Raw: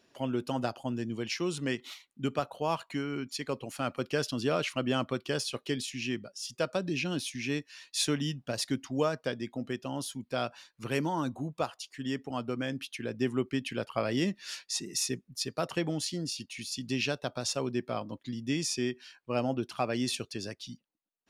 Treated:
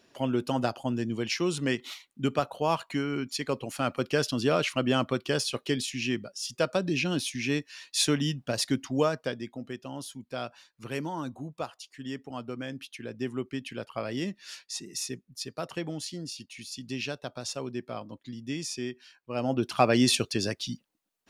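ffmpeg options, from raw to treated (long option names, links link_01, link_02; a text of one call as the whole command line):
ffmpeg -i in.wav -af "volume=16dB,afade=type=out:start_time=8.94:duration=0.66:silence=0.446684,afade=type=in:start_time=19.34:duration=0.48:silence=0.251189" out.wav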